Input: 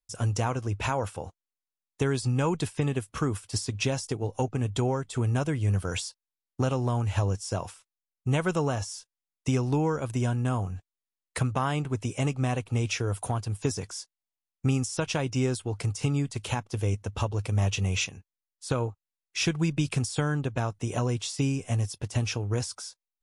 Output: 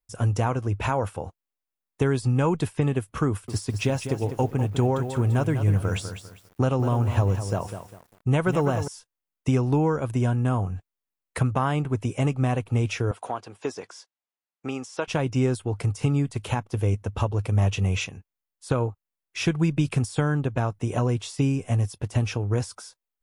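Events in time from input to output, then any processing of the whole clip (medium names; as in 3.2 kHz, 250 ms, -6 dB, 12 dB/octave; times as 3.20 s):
3.28–8.88 s: bit-crushed delay 200 ms, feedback 35%, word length 8-bit, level -9 dB
13.11–15.08 s: band-pass 390–5800 Hz
whole clip: peaking EQ 5.8 kHz -8.5 dB 2.1 oct; trim +4 dB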